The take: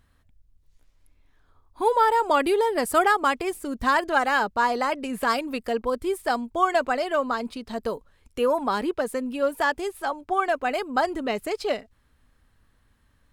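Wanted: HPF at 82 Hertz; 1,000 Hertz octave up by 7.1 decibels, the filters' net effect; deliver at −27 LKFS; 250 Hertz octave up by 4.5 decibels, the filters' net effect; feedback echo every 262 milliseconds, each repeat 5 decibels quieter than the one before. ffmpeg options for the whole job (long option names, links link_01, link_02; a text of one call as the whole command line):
ffmpeg -i in.wav -af "highpass=82,equalizer=frequency=250:width_type=o:gain=5,equalizer=frequency=1000:width_type=o:gain=8.5,aecho=1:1:262|524|786|1048|1310|1572|1834:0.562|0.315|0.176|0.0988|0.0553|0.031|0.0173,volume=-9dB" out.wav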